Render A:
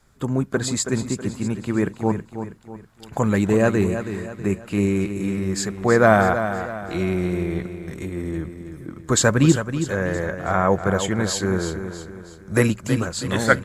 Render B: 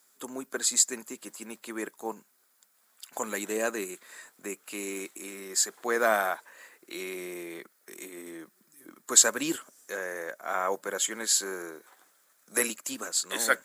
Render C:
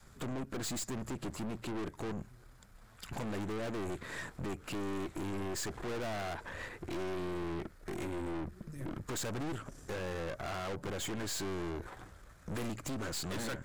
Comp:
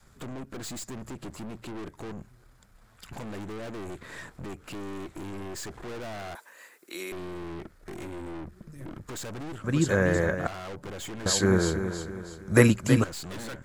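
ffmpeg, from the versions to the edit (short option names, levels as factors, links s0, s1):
-filter_complex "[0:a]asplit=2[s0][s1];[2:a]asplit=4[s2][s3][s4][s5];[s2]atrim=end=6.352[s6];[1:a]atrim=start=6.348:end=7.122[s7];[s3]atrim=start=7.118:end=9.642[s8];[s0]atrim=start=9.638:end=10.472[s9];[s4]atrim=start=10.468:end=11.262[s10];[s1]atrim=start=11.258:end=13.042[s11];[s5]atrim=start=13.038[s12];[s6][s7]acrossfade=d=0.004:c1=hsin:c2=hsin[s13];[s13][s8]acrossfade=d=0.004:c1=hsin:c2=hsin[s14];[s14][s9]acrossfade=d=0.004:c1=hsin:c2=hsin[s15];[s15][s10]acrossfade=d=0.004:c1=hsin:c2=hsin[s16];[s16][s11]acrossfade=d=0.004:c1=hsin:c2=hsin[s17];[s17][s12]acrossfade=d=0.004:c1=hsin:c2=hsin"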